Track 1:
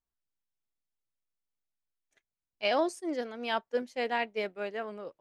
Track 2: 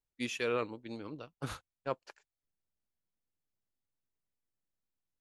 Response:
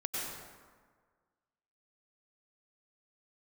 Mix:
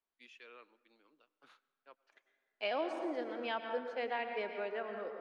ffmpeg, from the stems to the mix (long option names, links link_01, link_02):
-filter_complex "[0:a]volume=0.5dB,asplit=2[link_01][link_02];[link_02]volume=-6.5dB[link_03];[1:a]highpass=320,equalizer=frequency=510:width_type=o:width=2.5:gain=-9.5,volume=-15.5dB,asplit=2[link_04][link_05];[link_05]volume=-23.5dB[link_06];[2:a]atrim=start_sample=2205[link_07];[link_03][link_06]amix=inputs=2:normalize=0[link_08];[link_08][link_07]afir=irnorm=-1:irlink=0[link_09];[link_01][link_04][link_09]amix=inputs=3:normalize=0,acrossover=split=230 4200:gain=0.1 1 0.112[link_10][link_11][link_12];[link_10][link_11][link_12]amix=inputs=3:normalize=0,acrossover=split=120[link_13][link_14];[link_14]acompressor=threshold=-42dB:ratio=2[link_15];[link_13][link_15]amix=inputs=2:normalize=0"